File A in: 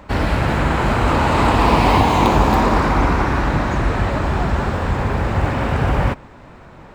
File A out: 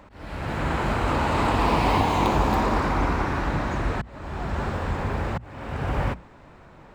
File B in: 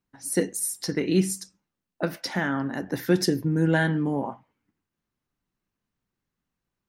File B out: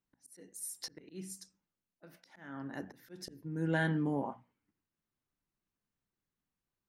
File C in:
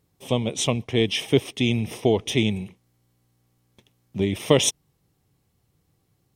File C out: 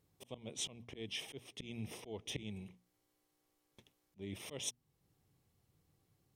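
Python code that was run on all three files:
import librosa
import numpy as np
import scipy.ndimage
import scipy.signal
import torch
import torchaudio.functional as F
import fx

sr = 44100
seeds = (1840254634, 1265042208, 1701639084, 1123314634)

y = fx.auto_swell(x, sr, attack_ms=616.0)
y = fx.hum_notches(y, sr, base_hz=60, count=4)
y = F.gain(torch.from_numpy(y), -7.0).numpy()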